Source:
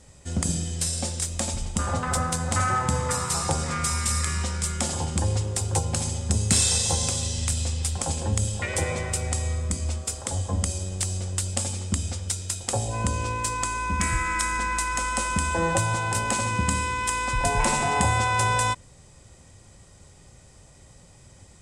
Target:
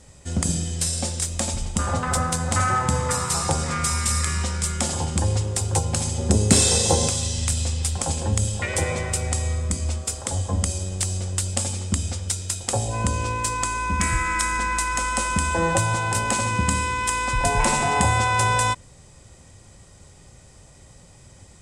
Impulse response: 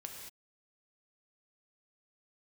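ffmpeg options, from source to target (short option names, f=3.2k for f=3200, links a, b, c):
-filter_complex "[0:a]asettb=1/sr,asplit=3[a][b][c];[a]atrim=end=6.184[d];[b]atrim=start=6.18:end=7.08,asetpts=PTS-STARTPTS,afade=t=in:d=0.004:c=qsin,afade=t=out:st=0.896:d=0.004:c=qsin,equalizer=f=390:t=o:w=2:g=10.5[e];[c]atrim=start=7.076[f];[d][e]acrossfade=d=0.004:c1=hsin:c2=qsin[g];[g][f]acrossfade=d=0.004:c1=qsin:c2=hsin,volume=2.5dB"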